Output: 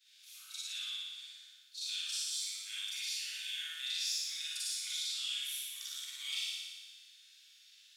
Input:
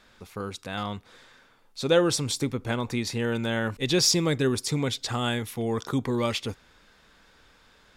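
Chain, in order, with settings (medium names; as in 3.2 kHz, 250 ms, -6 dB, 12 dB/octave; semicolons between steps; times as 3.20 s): short-time spectra conjugated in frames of 92 ms; inverse Chebyshev high-pass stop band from 620 Hz, stop band 70 dB; compression 6:1, threshold -41 dBFS, peak gain reduction 18 dB; flutter echo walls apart 10.1 m, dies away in 1.4 s; reverberation RT60 0.30 s, pre-delay 34 ms, DRR -3.5 dB; trim -1.5 dB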